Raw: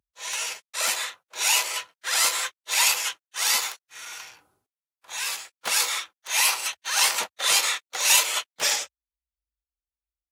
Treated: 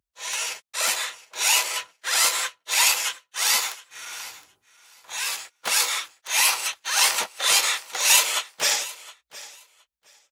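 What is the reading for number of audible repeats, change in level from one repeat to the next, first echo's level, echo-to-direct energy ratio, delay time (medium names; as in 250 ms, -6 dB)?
2, -15.0 dB, -18.5 dB, -18.5 dB, 716 ms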